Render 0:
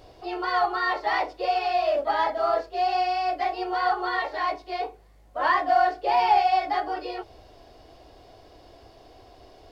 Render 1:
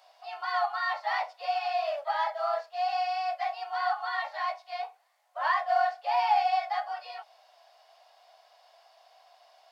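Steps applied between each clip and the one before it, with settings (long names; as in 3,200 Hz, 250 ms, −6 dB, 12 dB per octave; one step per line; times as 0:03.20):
Butterworth high-pass 640 Hz 48 dB per octave
level −4.5 dB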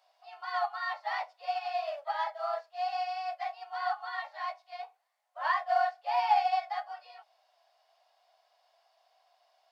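expander for the loud parts 1.5 to 1, over −40 dBFS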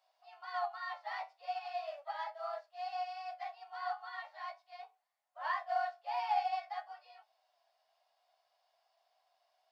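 flanger 0.41 Hz, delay 9 ms, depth 4.3 ms, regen +68%
level −3 dB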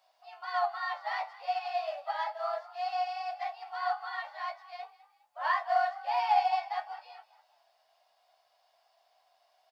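echo with shifted repeats 205 ms, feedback 40%, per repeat +45 Hz, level −18 dB
level +7 dB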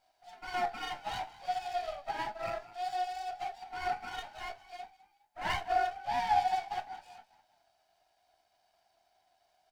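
lower of the sound and its delayed copy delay 1.3 ms
level −2 dB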